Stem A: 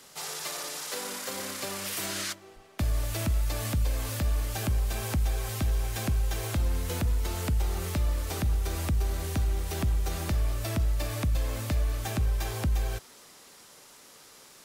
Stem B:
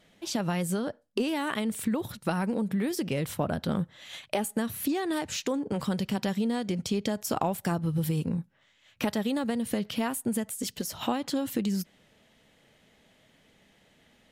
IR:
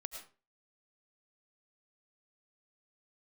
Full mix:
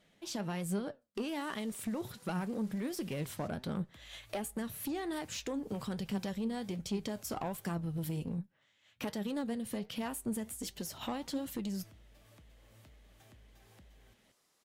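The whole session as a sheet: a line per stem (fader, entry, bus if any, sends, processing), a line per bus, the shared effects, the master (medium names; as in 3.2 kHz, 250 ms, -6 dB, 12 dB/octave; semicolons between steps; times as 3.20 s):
-17.0 dB, 1.15 s, muted 8.37–10.00 s, no send, compression, threshold -36 dBFS, peak gain reduction 12.5 dB
-2.0 dB, 0.00 s, no send, none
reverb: none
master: valve stage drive 25 dB, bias 0.2; flange 1.3 Hz, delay 4.8 ms, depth 5.2 ms, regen +78%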